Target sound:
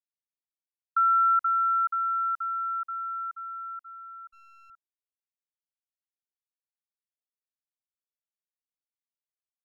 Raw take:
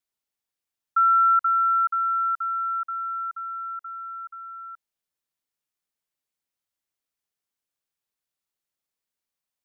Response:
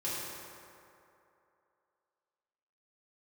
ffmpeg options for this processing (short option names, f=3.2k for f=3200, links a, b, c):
-filter_complex "[0:a]agate=range=-33dB:threshold=-32dB:ratio=3:detection=peak,asettb=1/sr,asplit=3[a][b][c];[a]atrim=end=4.294[d];[b]atrim=start=4.29:end=4.7,asetpts=PTS-STARTPTS,afade=t=in:d=0.004:c=qsin,afade=t=out:st=0.406:d=0.004:c=qsin,aeval=exprs='clip(val(0),-1,0.00106)':c=same[e];[c]atrim=start=4.696[f];[d][e]acrossfade=d=0.004:c1=hsin:c2=qsin[g];[g][f]acrossfade=d=0.004:c1=qsin:c2=hsin,volume=-3.5dB"